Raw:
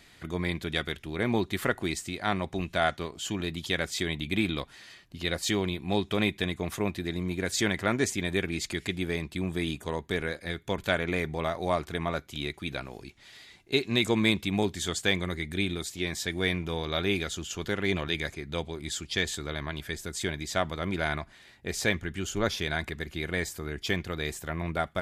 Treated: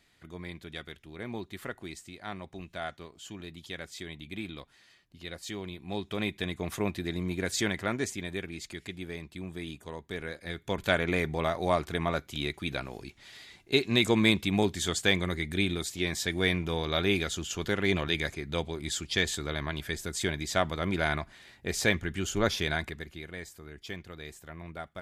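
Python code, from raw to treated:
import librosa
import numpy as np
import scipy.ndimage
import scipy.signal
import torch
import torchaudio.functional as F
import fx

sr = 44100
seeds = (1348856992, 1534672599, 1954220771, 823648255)

y = fx.gain(x, sr, db=fx.line((5.5, -11.0), (6.77, -1.0), (7.45, -1.0), (8.55, -8.5), (10.03, -8.5), (10.92, 1.0), (22.7, 1.0), (23.31, -11.0)))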